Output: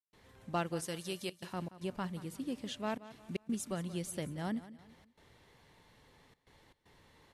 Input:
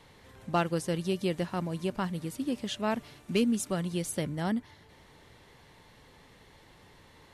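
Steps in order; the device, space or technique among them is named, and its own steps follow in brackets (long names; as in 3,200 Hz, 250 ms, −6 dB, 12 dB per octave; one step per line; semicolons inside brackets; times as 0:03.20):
0:00.82–0:01.53: spectral tilt +2.5 dB per octave
trance gate with a delay (gate pattern ".xxxxxxxxx.xx" 116 BPM −60 dB; repeating echo 178 ms, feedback 39%, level −16 dB)
level −7 dB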